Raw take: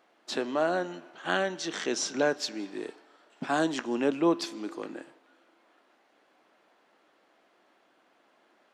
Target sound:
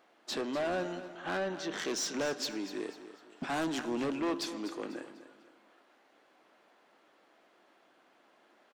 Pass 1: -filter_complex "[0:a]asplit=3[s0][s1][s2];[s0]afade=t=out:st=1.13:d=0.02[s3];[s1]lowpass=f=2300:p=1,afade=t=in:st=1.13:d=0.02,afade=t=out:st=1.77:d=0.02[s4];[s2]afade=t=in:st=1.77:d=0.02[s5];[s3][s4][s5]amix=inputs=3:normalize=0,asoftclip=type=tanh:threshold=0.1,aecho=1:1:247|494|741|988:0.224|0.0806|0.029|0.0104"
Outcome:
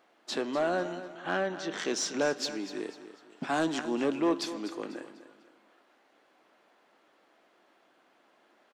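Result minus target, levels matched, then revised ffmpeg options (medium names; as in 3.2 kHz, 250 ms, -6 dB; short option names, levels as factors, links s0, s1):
saturation: distortion -9 dB
-filter_complex "[0:a]asplit=3[s0][s1][s2];[s0]afade=t=out:st=1.13:d=0.02[s3];[s1]lowpass=f=2300:p=1,afade=t=in:st=1.13:d=0.02,afade=t=out:st=1.77:d=0.02[s4];[s2]afade=t=in:st=1.77:d=0.02[s5];[s3][s4][s5]amix=inputs=3:normalize=0,asoftclip=type=tanh:threshold=0.0355,aecho=1:1:247|494|741|988:0.224|0.0806|0.029|0.0104"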